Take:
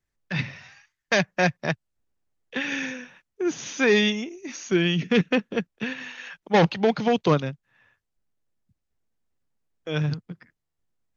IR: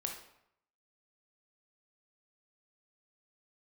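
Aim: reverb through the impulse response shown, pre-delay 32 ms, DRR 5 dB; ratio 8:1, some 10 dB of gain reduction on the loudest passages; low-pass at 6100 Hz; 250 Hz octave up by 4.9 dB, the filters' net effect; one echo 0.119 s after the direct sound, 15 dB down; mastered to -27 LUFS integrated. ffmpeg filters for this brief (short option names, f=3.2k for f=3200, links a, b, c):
-filter_complex "[0:a]lowpass=6.1k,equalizer=f=250:t=o:g=6.5,acompressor=threshold=-22dB:ratio=8,aecho=1:1:119:0.178,asplit=2[a][b];[1:a]atrim=start_sample=2205,adelay=32[c];[b][c]afir=irnorm=-1:irlink=0,volume=-5dB[d];[a][d]amix=inputs=2:normalize=0,volume=1dB"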